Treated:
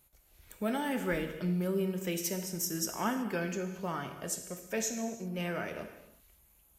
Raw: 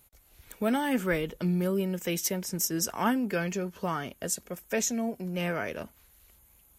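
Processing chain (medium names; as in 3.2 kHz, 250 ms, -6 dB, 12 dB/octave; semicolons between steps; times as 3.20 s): gated-style reverb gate 400 ms falling, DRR 5.5 dB; trim -5.5 dB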